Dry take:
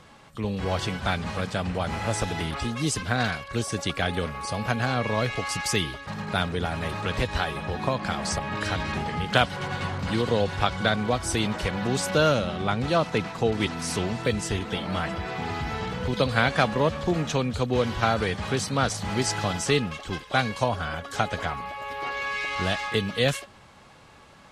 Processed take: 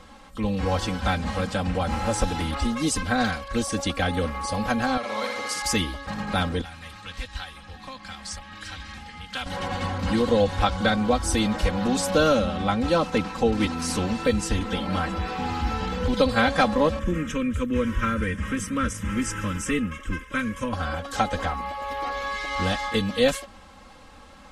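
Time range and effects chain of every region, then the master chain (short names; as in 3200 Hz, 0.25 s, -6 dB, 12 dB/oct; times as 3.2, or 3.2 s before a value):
4.97–5.62 HPF 1200 Hz 6 dB/oct + flutter echo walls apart 10.4 m, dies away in 0.88 s
6.61–9.46 passive tone stack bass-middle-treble 5-5-5 + notch 620 Hz, Q 20 + Doppler distortion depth 0.13 ms
16.99–20.73 bell 770 Hz -9.5 dB 0.2 oct + fixed phaser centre 1800 Hz, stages 4
whole clip: low shelf 67 Hz +11 dB; comb 3.8 ms, depth 90%; dynamic EQ 2600 Hz, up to -3 dB, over -33 dBFS, Q 0.72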